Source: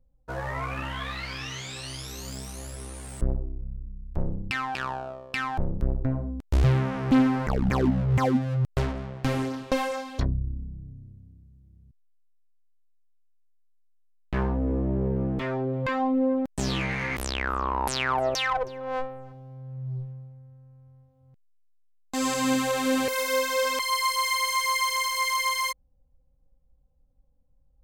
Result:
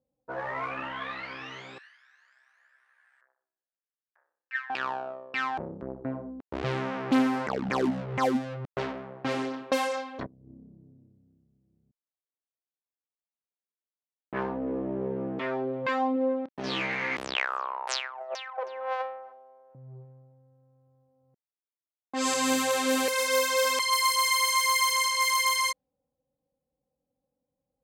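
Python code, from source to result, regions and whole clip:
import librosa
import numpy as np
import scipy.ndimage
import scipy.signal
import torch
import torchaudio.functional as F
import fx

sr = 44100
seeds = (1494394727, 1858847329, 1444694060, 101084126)

y = fx.chain(x, sr, fx.ladder_highpass(hz=1600.0, resonance_pct=80),
    fx.high_shelf(hz=5000.0, db=4.0), at=(1.78, 4.7))
y = fx.chain(y, sr, fx.low_shelf(hz=96.0, db=-9.0),
    fx.over_compress(threshold_db=-36.0, ratio=-0.5), at=(10.26, 11.08))
y = fx.chain(y, sr, fx.savgol(points=15),
    fx.doubler(ms=29.0, db=-14),
    fx.upward_expand(threshold_db=-36.0, expansion=1.5), at=(16.13, 16.64))
y = fx.chain(y, sr, fx.highpass(hz=560.0, slope=24),
    fx.over_compress(threshold_db=-32.0, ratio=-0.5), at=(17.35, 19.75))
y = scipy.signal.sosfilt(scipy.signal.butter(2, 280.0, 'highpass', fs=sr, output='sos'), y)
y = fx.env_lowpass(y, sr, base_hz=850.0, full_db=-22.0)
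y = fx.high_shelf(y, sr, hz=5100.0, db=5.5)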